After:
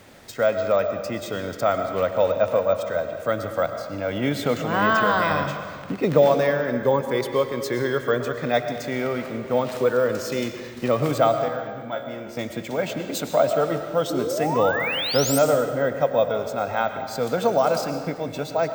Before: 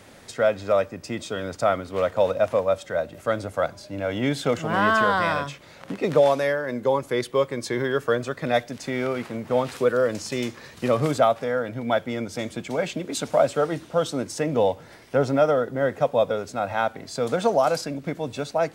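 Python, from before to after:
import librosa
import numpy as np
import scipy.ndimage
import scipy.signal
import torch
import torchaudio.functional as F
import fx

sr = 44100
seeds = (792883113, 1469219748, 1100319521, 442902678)

y = fx.low_shelf(x, sr, hz=260.0, db=6.5, at=(5.31, 7.01))
y = fx.comb_fb(y, sr, f0_hz=69.0, decay_s=0.38, harmonics='all', damping=0.0, mix_pct=80, at=(11.48, 12.37))
y = fx.spec_paint(y, sr, seeds[0], shape='rise', start_s=14.1, length_s=1.29, low_hz=300.0, high_hz=9100.0, level_db=-27.0)
y = fx.rev_freeverb(y, sr, rt60_s=1.7, hf_ratio=0.8, predelay_ms=70, drr_db=7.0)
y = np.repeat(scipy.signal.resample_poly(y, 1, 2), 2)[:len(y)]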